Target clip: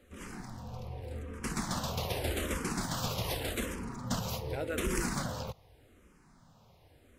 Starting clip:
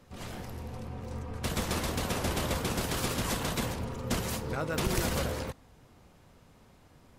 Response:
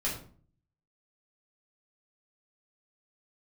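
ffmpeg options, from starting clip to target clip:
-filter_complex "[0:a]asplit=2[link_01][link_02];[link_02]afreqshift=-0.85[link_03];[link_01][link_03]amix=inputs=2:normalize=1"

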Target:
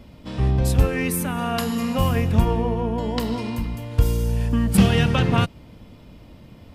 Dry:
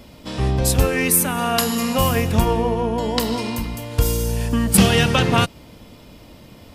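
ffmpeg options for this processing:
ffmpeg -i in.wav -af "bass=frequency=250:gain=6,treble=frequency=4000:gain=-7,volume=-5dB" out.wav

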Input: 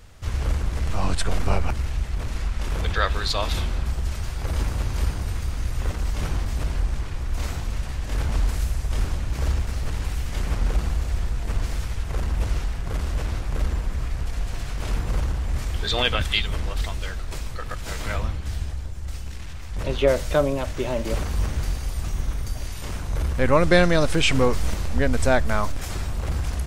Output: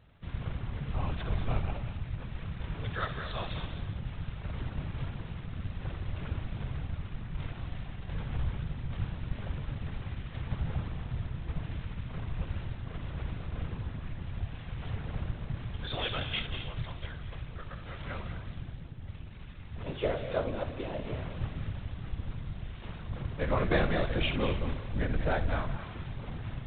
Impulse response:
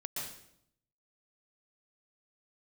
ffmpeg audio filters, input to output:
-filter_complex "[0:a]asplit=2[link_01][link_02];[1:a]atrim=start_sample=2205,highshelf=frequency=5400:gain=10.5,adelay=65[link_03];[link_02][link_03]afir=irnorm=-1:irlink=0,volume=-8.5dB[link_04];[link_01][link_04]amix=inputs=2:normalize=0,afftfilt=real='hypot(re,im)*cos(2*PI*random(0))':imag='hypot(re,im)*sin(2*PI*random(1))':win_size=512:overlap=0.75,volume=-5.5dB" -ar 8000 -c:a adpcm_g726 -b:a 24k

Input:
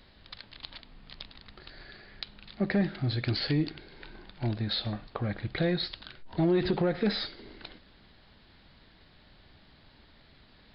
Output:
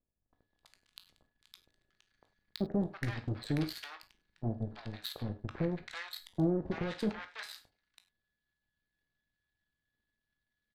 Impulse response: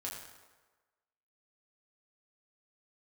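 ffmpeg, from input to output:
-filter_complex "[0:a]aeval=exprs='val(0)+0.002*sin(2*PI*1700*n/s)':channel_layout=same,aphaser=in_gain=1:out_gain=1:delay=1.2:decay=0.26:speed=1.1:type=triangular,aeval=exprs='0.178*(cos(1*acos(clip(val(0)/0.178,-1,1)))-cos(1*PI/2))+0.00501*(cos(3*acos(clip(val(0)/0.178,-1,1)))-cos(3*PI/2))+0.0224*(cos(7*acos(clip(val(0)/0.178,-1,1)))-cos(7*PI/2))+0.00398*(cos(8*acos(clip(val(0)/0.178,-1,1)))-cos(8*PI/2))':channel_layout=same,acrossover=split=900[link_01][link_02];[link_02]adelay=330[link_03];[link_01][link_03]amix=inputs=2:normalize=0,asplit=2[link_04][link_05];[1:a]atrim=start_sample=2205,atrim=end_sample=3969,adelay=18[link_06];[link_05][link_06]afir=irnorm=-1:irlink=0,volume=-6.5dB[link_07];[link_04][link_07]amix=inputs=2:normalize=0,volume=-6.5dB"

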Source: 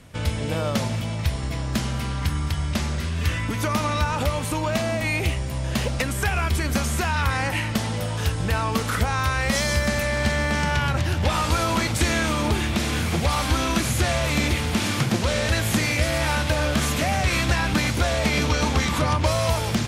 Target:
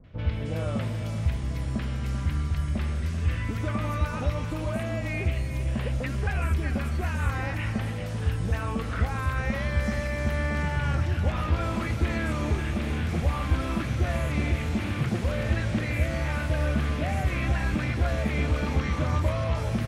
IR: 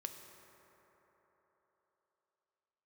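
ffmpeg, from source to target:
-filter_complex "[0:a]lowshelf=frequency=75:gain=9,bandreject=frequency=920:width=17,acrossover=split=1000|4000[link_01][link_02][link_03];[link_02]adelay=40[link_04];[link_03]adelay=310[link_05];[link_01][link_04][link_05]amix=inputs=3:normalize=0,acrossover=split=2900[link_06][link_07];[link_07]acompressor=threshold=-44dB:ratio=4:attack=1:release=60[link_08];[link_06][link_08]amix=inputs=2:normalize=0,asplit=2[link_09][link_10];[link_10]aecho=0:1:388:0.299[link_11];[link_09][link_11]amix=inputs=2:normalize=0,volume=-6dB" -ar 44100 -c:a ac3 -b:a 128k

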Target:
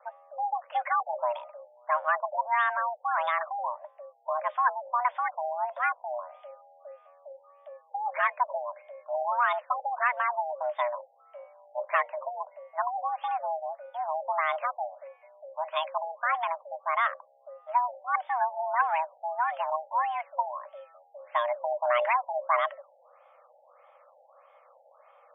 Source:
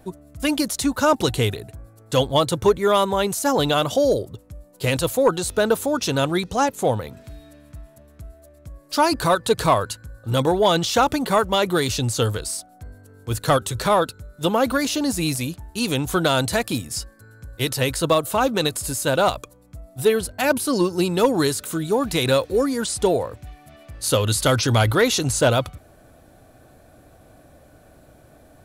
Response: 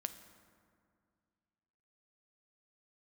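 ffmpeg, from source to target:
-af "asetrate=49833,aresample=44100,afreqshift=480,afftfilt=real='re*lt(b*sr/1024,860*pow(3700/860,0.5+0.5*sin(2*PI*1.6*pts/sr)))':imag='im*lt(b*sr/1024,860*pow(3700/860,0.5+0.5*sin(2*PI*1.6*pts/sr)))':win_size=1024:overlap=0.75,volume=-7.5dB"

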